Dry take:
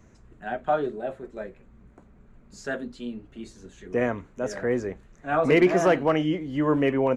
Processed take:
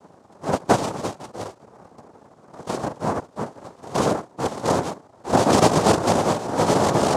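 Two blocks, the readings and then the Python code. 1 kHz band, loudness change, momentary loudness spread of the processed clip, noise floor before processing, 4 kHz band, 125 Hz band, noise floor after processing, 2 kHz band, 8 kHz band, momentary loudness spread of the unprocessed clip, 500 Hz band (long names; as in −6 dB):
+8.5 dB, +3.5 dB, 18 LU, −55 dBFS, +10.5 dB, +6.5 dB, −53 dBFS, −0.5 dB, can't be measured, 20 LU, +2.5 dB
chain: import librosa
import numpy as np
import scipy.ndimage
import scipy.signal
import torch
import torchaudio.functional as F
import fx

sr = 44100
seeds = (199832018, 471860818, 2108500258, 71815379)

y = fx.sample_hold(x, sr, seeds[0], rate_hz=1000.0, jitter_pct=0)
y = fx.peak_eq(y, sr, hz=220.0, db=14.0, octaves=0.84)
y = fx.noise_vocoder(y, sr, seeds[1], bands=2)
y = y * 10.0 ** (-1.5 / 20.0)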